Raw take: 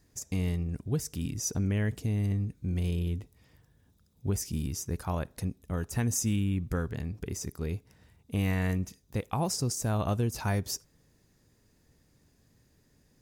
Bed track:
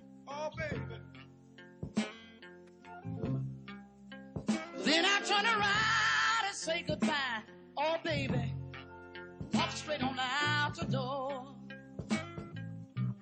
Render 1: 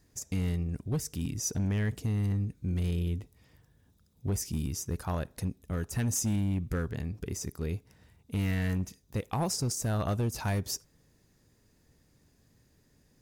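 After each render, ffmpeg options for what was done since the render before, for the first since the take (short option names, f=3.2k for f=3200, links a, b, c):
-af "asoftclip=type=hard:threshold=-23.5dB"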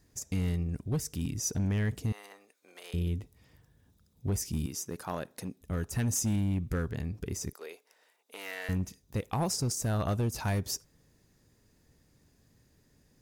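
-filter_complex "[0:a]asettb=1/sr,asplit=3[a][b][c];[a]atrim=end=2.124[d];[b]atrim=start=2.12:end=2.94,asetpts=PTS-STARTPTS,afade=t=in:d=0.004:c=qsin,afade=t=out:st=0.816:d=0.004:c=qsin,highpass=f=560:w=0.5412,highpass=f=560:w=1.3066[e];[c]atrim=start=2.936[f];[d][e]acrossfade=d=0.004:c1=hsin:c2=qsin[g];[g][f]acrossfade=d=0.004:c1=qsin:c2=hsin,asettb=1/sr,asplit=3[h][i][j];[h]atrim=end=4.664[k];[i]atrim=start=4.66:end=5.61,asetpts=PTS-STARTPTS,afade=t=in:d=0.004:c=qsin,afade=t=out:st=0.946:d=0.004:c=qsin,highpass=210[l];[j]atrim=start=5.606[m];[k][l]acrossfade=d=0.004:c1=hsin:c2=qsin[n];[n][m]acrossfade=d=0.004:c1=qsin:c2=hsin,asettb=1/sr,asplit=3[o][p][q];[o]atrim=end=7.534[r];[p]atrim=start=7.53:end=8.69,asetpts=PTS-STARTPTS,afade=t=in:d=0.004:c=qsin,afade=t=out:st=1.156:d=0.004:c=qsin,highpass=f=470:w=0.5412,highpass=f=470:w=1.3066[s];[q]atrim=start=8.686[t];[r][s]acrossfade=d=0.004:c1=hsin:c2=qsin[u];[u][t]acrossfade=d=0.004:c1=qsin:c2=hsin"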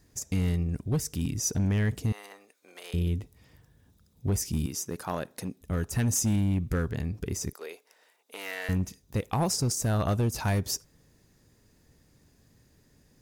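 -af "volume=3.5dB"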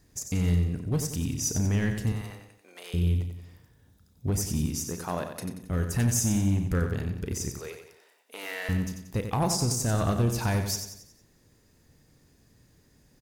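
-filter_complex "[0:a]asplit=2[a][b];[b]adelay=34,volume=-12dB[c];[a][c]amix=inputs=2:normalize=0,aecho=1:1:91|182|273|364|455:0.422|0.194|0.0892|0.041|0.0189"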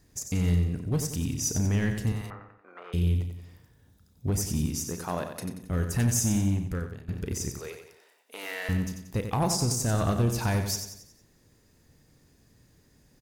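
-filter_complex "[0:a]asettb=1/sr,asplit=3[a][b][c];[a]atrim=end=2.304[d];[b]atrim=start=2.3:end=2.93,asetpts=PTS-STARTPTS,afade=t=in:d=0.004:c=qsin,afade=t=out:st=0.626:d=0.004:c=qsin,lowpass=f=1.3k:t=q:w=6.4[e];[c]atrim=start=2.926[f];[d][e]acrossfade=d=0.004:c1=hsin:c2=qsin[g];[g][f]acrossfade=d=0.004:c1=qsin:c2=hsin,asplit=2[h][i];[h]atrim=end=7.08,asetpts=PTS-STARTPTS,afade=t=out:st=6.41:d=0.67:silence=0.112202[j];[i]atrim=start=7.08,asetpts=PTS-STARTPTS,afade=t=in:d=0.004:c=hsin:silence=0.112202[k];[j][k]concat=n=2:v=0:a=1"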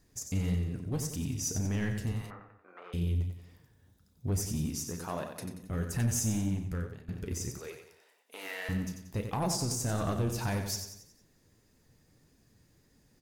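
-af "flanger=delay=3.3:depth=9.4:regen=54:speed=1.7:shape=triangular,asoftclip=type=tanh:threshold=-21dB"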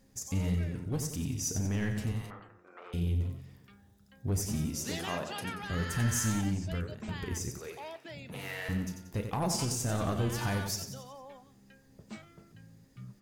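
-filter_complex "[1:a]volume=-11.5dB[a];[0:a][a]amix=inputs=2:normalize=0"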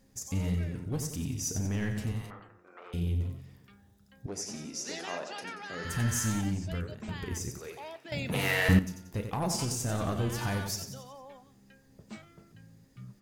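-filter_complex "[0:a]asettb=1/sr,asplit=3[a][b][c];[a]atrim=end=4.264[d];[b]atrim=start=4.26:end=5.85,asetpts=PTS-STARTPTS,afade=t=in:d=0.004:c=qsin,afade=t=out:st=1.586:d=0.004:c=qsin,highpass=330,equalizer=f=1.1k:t=q:w=4:g=-4,equalizer=f=3.2k:t=q:w=4:g=-5,equalizer=f=5.5k:t=q:w=4:g=4,equalizer=f=8.5k:t=q:w=4:g=-7,lowpass=f=9.1k:w=0.5412,lowpass=f=9.1k:w=1.3066[e];[c]atrim=start=5.846[f];[d][e]acrossfade=d=0.004:c1=hsin:c2=qsin[g];[g][f]acrossfade=d=0.004:c1=qsin:c2=hsin,asplit=3[h][i][j];[h]atrim=end=8.122[k];[i]atrim=start=8.118:end=8.792,asetpts=PTS-STARTPTS,volume=11.5dB[l];[j]atrim=start=8.788[m];[k][l]acrossfade=d=0.004:c1=hsin:c2=hsin[n];[n][m]acrossfade=d=0.004:c1=hsin:c2=hsin"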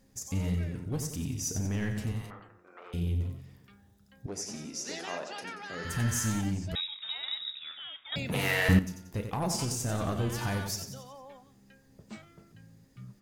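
-filter_complex "[0:a]asettb=1/sr,asplit=3[a][b][c];[a]atrim=end=6.754[d];[b]atrim=start=6.75:end=8.16,asetpts=PTS-STARTPTS,afade=t=in:d=0.004:c=qsin,afade=t=out:st=1.406:d=0.004:c=qsin,lowpass=f=3.3k:t=q:w=0.5098,lowpass=f=3.3k:t=q:w=0.6013,lowpass=f=3.3k:t=q:w=0.9,lowpass=f=3.3k:t=q:w=2.563,afreqshift=-3900[e];[c]atrim=start=8.156[f];[d][e]acrossfade=d=0.004:c1=hsin:c2=qsin[g];[g][f]acrossfade=d=0.004:c1=qsin:c2=hsin"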